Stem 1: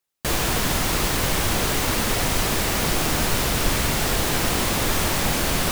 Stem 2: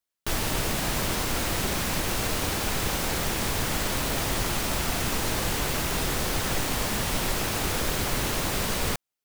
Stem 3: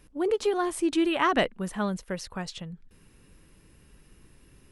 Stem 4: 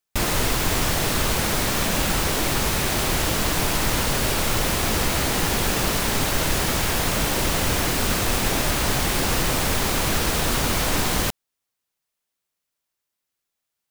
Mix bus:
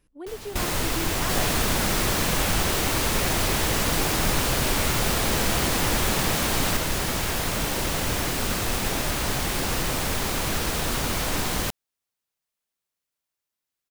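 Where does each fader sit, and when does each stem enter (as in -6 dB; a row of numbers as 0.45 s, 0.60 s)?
-4.5 dB, -14.0 dB, -10.5 dB, -4.0 dB; 1.05 s, 0.00 s, 0.00 s, 0.40 s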